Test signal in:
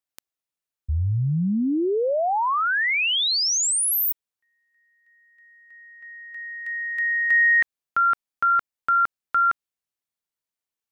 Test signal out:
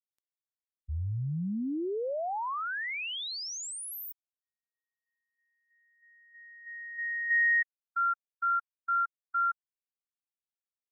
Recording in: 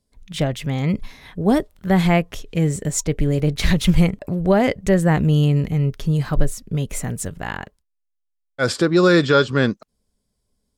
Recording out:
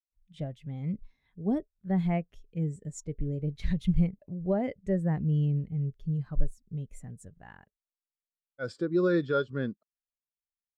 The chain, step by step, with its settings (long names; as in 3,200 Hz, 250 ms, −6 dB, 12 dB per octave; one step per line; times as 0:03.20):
every bin expanded away from the loudest bin 1.5 to 1
level −7.5 dB